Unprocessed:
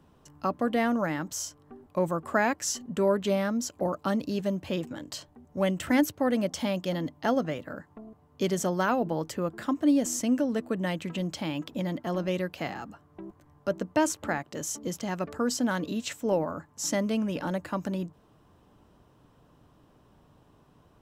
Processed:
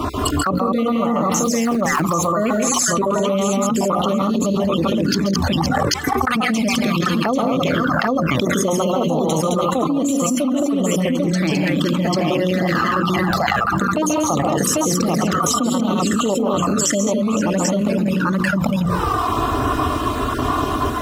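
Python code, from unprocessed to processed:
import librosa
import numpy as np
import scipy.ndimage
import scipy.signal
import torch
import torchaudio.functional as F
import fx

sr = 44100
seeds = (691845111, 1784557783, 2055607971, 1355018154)

y = fx.spec_dropout(x, sr, seeds[0], share_pct=42)
y = scipy.signal.sosfilt(scipy.signal.butter(2, 46.0, 'highpass', fs=sr, output='sos'), y)
y = fx.peak_eq(y, sr, hz=1200.0, db=14.5, octaves=0.26)
y = fx.hum_notches(y, sr, base_hz=60, count=9)
y = fx.quant_dither(y, sr, seeds[1], bits=8, dither='none', at=(1.43, 2.03))
y = fx.gate_flip(y, sr, shuts_db=-27.0, range_db=-36, at=(5.14, 6.27))
y = fx.graphic_eq_31(y, sr, hz=(200, 4000, 10000), db=(10, 8, 6), at=(9.09, 9.62))
y = fx.echo_multitap(y, sr, ms=(137, 141, 164, 213, 515, 792), db=(-5.0, -9.5, -9.0, -5.0, -12.5, -3.5))
y = fx.env_flanger(y, sr, rest_ms=3.1, full_db=-25.0)
y = fx.env_flatten(y, sr, amount_pct=100)
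y = y * 10.0 ** (2.0 / 20.0)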